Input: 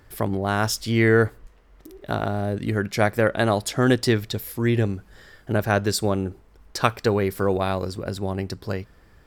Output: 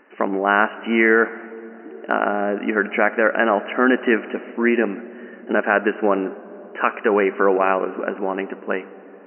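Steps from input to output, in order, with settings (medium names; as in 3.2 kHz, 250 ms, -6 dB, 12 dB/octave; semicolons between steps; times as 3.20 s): peak limiter -12 dBFS, peak gain reduction 9 dB; brick-wall FIR band-pass 200–3000 Hz; on a send at -16.5 dB: reverberation RT60 5.4 s, pre-delay 30 ms; on the sum: dynamic bell 1.5 kHz, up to +6 dB, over -43 dBFS, Q 0.9; trim +5 dB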